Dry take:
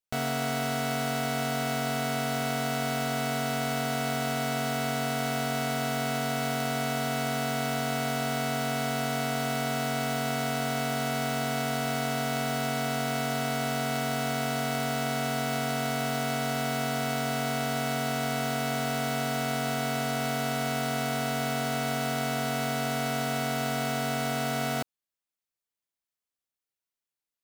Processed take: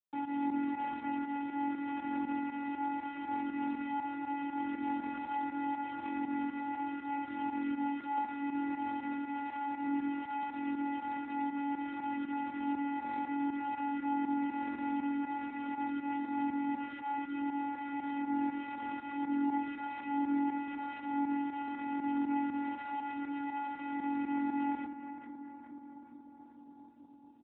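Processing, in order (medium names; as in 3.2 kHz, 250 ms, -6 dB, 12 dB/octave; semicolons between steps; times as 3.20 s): comb 6.5 ms, depth 56%; chorus voices 6, 0.15 Hz, delay 24 ms, depth 4.9 ms; vocoder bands 16, square 283 Hz; volume shaper 120 bpm, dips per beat 2, -13 dB, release 76 ms; 9.13–9.88 s: bass shelf 240 Hz -7.5 dB; filtered feedback delay 426 ms, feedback 75%, low-pass 1.7 kHz, level -8.5 dB; trim -1.5 dB; AMR-NB 7.95 kbps 8 kHz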